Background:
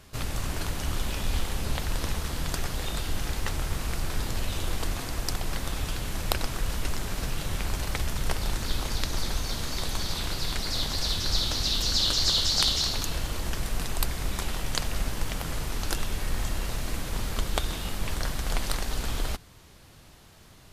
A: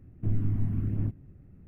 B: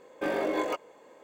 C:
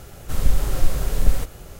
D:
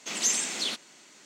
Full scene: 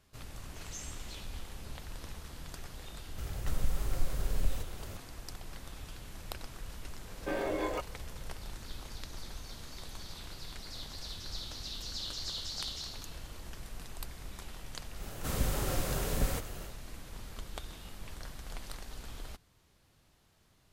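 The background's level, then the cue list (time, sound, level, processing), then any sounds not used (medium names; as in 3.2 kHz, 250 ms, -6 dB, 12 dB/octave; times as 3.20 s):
background -15 dB
0.49 s: add D -17 dB + chorus 2 Hz, delay 16 ms, depth 4.1 ms
3.18 s: add C -12.5 dB + three bands compressed up and down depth 70%
7.05 s: add B -5 dB
14.95 s: add C -3 dB, fades 0.10 s + high-pass 120 Hz 6 dB/octave
not used: A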